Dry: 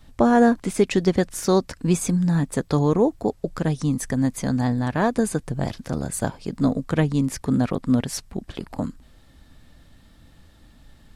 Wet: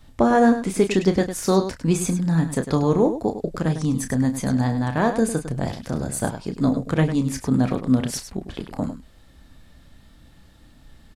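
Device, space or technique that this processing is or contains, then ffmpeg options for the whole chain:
slapback doubling: -filter_complex "[0:a]asplit=3[s0][s1][s2];[s1]adelay=31,volume=0.355[s3];[s2]adelay=102,volume=0.299[s4];[s0][s3][s4]amix=inputs=3:normalize=0"

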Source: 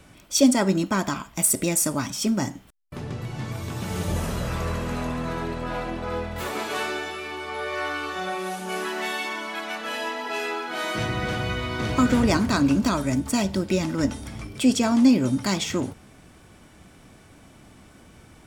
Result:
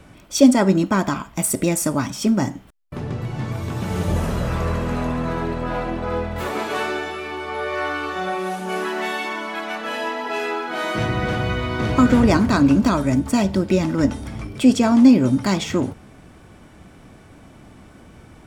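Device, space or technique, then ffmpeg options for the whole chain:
behind a face mask: -af "highshelf=f=2600:g=-8,volume=1.88"

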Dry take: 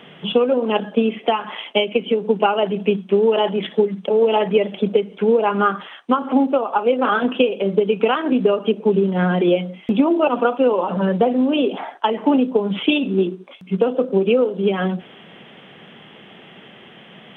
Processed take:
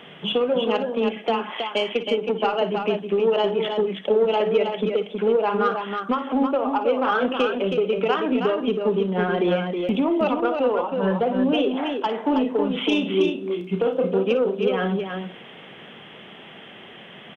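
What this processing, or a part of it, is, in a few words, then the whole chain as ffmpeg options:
soft clipper into limiter: -filter_complex "[0:a]asettb=1/sr,asplit=3[s0][s1][s2];[s0]atrim=end=10.404[s3];[s1]atrim=start=10.4:end=11.05,asetpts=PTS-STARTPTS,afade=t=in:d=0.004:c=qsin,afade=t=out:st=0.646:d=0.004:c=qsin,agate=range=0.0224:threshold=0.158:ratio=3:detection=peak[s4];[s2]atrim=start=11.046[s5];[s3][s4]acrossfade=d=0.004:c1=hsin:c2=qsin[s6];[s6][s5]acrossfade=d=0.004:c1=qsin:c2=hsin,equalizer=f=170:t=o:w=1.6:g=-3.5,asettb=1/sr,asplit=3[s7][s8][s9];[s7]atrim=end=12.224[s10];[s8]atrim=start=12.22:end=14.11,asetpts=PTS-STARTPTS,afade=t=in:d=0.004:c=qsin,afade=t=out:st=1.886:d=0.004:c=qsin,asplit=2[s11][s12];[s12]adelay=34,volume=0.501[s13];[s11][s13]amix=inputs=2:normalize=0,atrim=end_sample=83349[s14];[s9]atrim=start=14.106[s15];[s10][s14]acrossfade=d=0.004:c1=hsin:c2=qsin[s16];[s16][s15]acrossfade=d=0.004:c1=qsin:c2=hsin,asoftclip=type=tanh:threshold=0.376,alimiter=limit=0.2:level=0:latency=1:release=481,aecho=1:1:47|58|320:0.133|0.224|0.531"

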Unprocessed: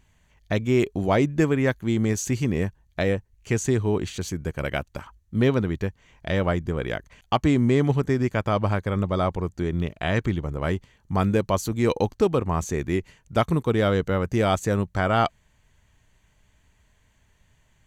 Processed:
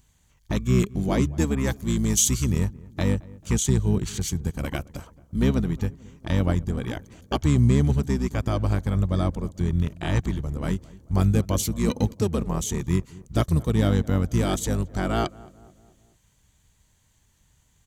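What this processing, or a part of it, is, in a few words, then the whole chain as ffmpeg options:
octave pedal: -filter_complex "[0:a]highpass=f=110:p=1,asplit=2[s0][s1];[s1]asetrate=22050,aresample=44100,atempo=2,volume=0.794[s2];[s0][s2]amix=inputs=2:normalize=0,bass=f=250:g=10,treble=f=4000:g=15,asplit=2[s3][s4];[s4]adelay=220,lowpass=f=1300:p=1,volume=0.0891,asplit=2[s5][s6];[s6]adelay=220,lowpass=f=1300:p=1,volume=0.55,asplit=2[s7][s8];[s8]adelay=220,lowpass=f=1300:p=1,volume=0.55,asplit=2[s9][s10];[s10]adelay=220,lowpass=f=1300:p=1,volume=0.55[s11];[s3][s5][s7][s9][s11]amix=inputs=5:normalize=0,asettb=1/sr,asplit=3[s12][s13][s14];[s12]atrim=end=1.554[s15];[s13]atrim=start=1.55:end=2.59,asetpts=PTS-STARTPTS,afade=t=in:d=0.004:c=qsin,afade=t=out:st=1.036:d=0.004:c=qsin,adynamicequalizer=threshold=0.02:dfrequency=3200:dqfactor=0.7:tfrequency=3200:tqfactor=0.7:attack=5:release=100:ratio=0.375:range=3:mode=boostabove:tftype=highshelf[s16];[s14]atrim=start=2.586[s17];[s15][s16]acrossfade=d=0.004:c1=hsin:c2=qsin[s18];[s18][s17]acrossfade=d=0.004:c1=qsin:c2=hsin,volume=0.422"

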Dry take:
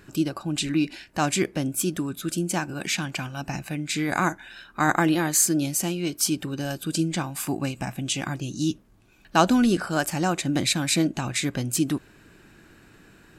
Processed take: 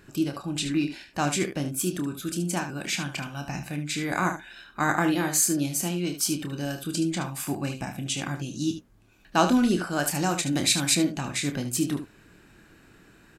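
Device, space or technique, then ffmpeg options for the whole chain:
slapback doubling: -filter_complex "[0:a]asplit=3[s0][s1][s2];[s1]adelay=28,volume=0.398[s3];[s2]adelay=74,volume=0.316[s4];[s0][s3][s4]amix=inputs=3:normalize=0,asettb=1/sr,asplit=3[s5][s6][s7];[s5]atrim=end=10.054[s8];[s6]atrim=start=10.05:end=10.95,asetpts=PTS-STARTPTS,afade=t=in:d=0.004:c=qsin,afade=t=out:st=0.896:d=0.004:c=qsin,highshelf=f=3900:g=6.5[s9];[s7]atrim=start=10.946[s10];[s8][s9]acrossfade=d=0.004:c1=hsin:c2=qsin[s11];[s11][s10]acrossfade=d=0.004:c1=qsin:c2=hsin,volume=0.708"

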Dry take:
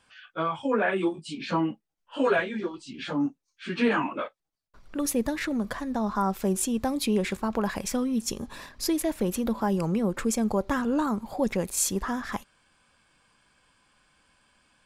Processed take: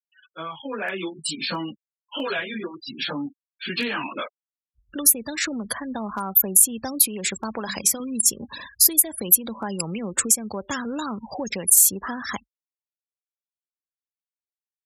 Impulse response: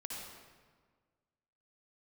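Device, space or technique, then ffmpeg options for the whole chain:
FM broadcast chain: -filter_complex "[0:a]asettb=1/sr,asplit=3[s0][s1][s2];[s0]atrim=end=7.544[s3];[s1]atrim=start=7.54:end=8,asetpts=PTS-STARTPTS,afade=t=in:d=0.004:c=qsin,afade=t=out:st=0.456:d=0.004:c=qsin,bandreject=f=50:t=h:w=6,bandreject=f=100:t=h:w=6,bandreject=f=150:t=h:w=6,bandreject=f=200:t=h:w=6,bandreject=f=250:t=h:w=6,bandreject=f=300:t=h:w=6[s4];[s2]atrim=start=7.996[s5];[s3][s4]acrossfade=d=0.004:c1=hsin:c2=qsin[s6];[s6][s5]acrossfade=d=0.004:c1=qsin:c2=hsin,afftfilt=real='re*gte(hypot(re,im),0.0126)':imag='im*gte(hypot(re,im),0.0126)':win_size=1024:overlap=0.75,highpass=f=47:w=0.5412,highpass=f=47:w=1.3066,dynaudnorm=f=400:g=5:m=3.76,acrossover=split=86|2100[s7][s8][s9];[s7]acompressor=threshold=0.00282:ratio=4[s10];[s8]acompressor=threshold=0.1:ratio=4[s11];[s9]acompressor=threshold=0.0355:ratio=4[s12];[s10][s11][s12]amix=inputs=3:normalize=0,aemphasis=mode=production:type=75fm,alimiter=limit=0.335:level=0:latency=1:release=257,asoftclip=type=hard:threshold=0.282,lowpass=15000,aemphasis=mode=production:type=75fm,volume=0.473"

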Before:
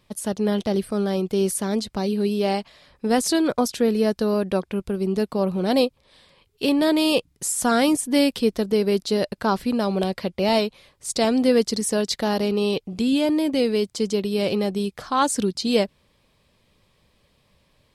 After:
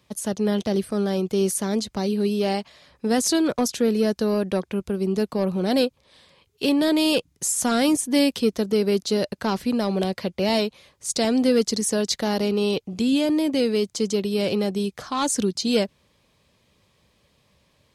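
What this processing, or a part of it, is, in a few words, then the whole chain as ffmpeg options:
one-band saturation: -filter_complex "[0:a]highpass=52,equalizer=f=6400:t=o:w=0.31:g=5.5,acrossover=split=460|2000[s0][s1][s2];[s1]asoftclip=type=tanh:threshold=0.0708[s3];[s0][s3][s2]amix=inputs=3:normalize=0"

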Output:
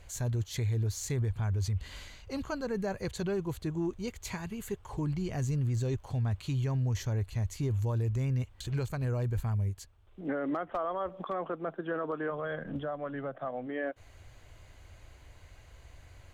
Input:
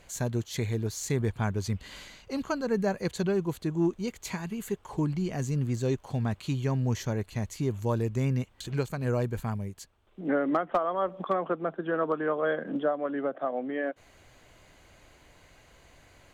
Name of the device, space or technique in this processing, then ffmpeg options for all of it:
car stereo with a boomy subwoofer: -filter_complex "[0:a]lowshelf=f=130:t=q:w=1.5:g=9.5,alimiter=limit=0.075:level=0:latency=1:release=14,asplit=3[s0][s1][s2];[s0]afade=t=out:st=12.3:d=0.02[s3];[s1]asubboost=boost=8:cutoff=110,afade=t=in:st=12.3:d=0.02,afade=t=out:st=13.66:d=0.02[s4];[s2]afade=t=in:st=13.66:d=0.02[s5];[s3][s4][s5]amix=inputs=3:normalize=0,volume=0.75"

